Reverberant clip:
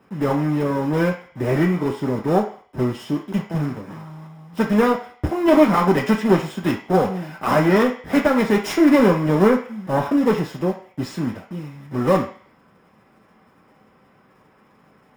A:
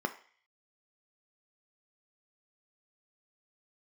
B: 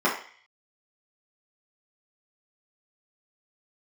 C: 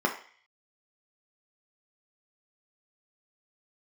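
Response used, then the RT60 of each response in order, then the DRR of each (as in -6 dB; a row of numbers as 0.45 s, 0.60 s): C; 0.45 s, 0.45 s, 0.45 s; 7.0 dB, -8.0 dB, 0.5 dB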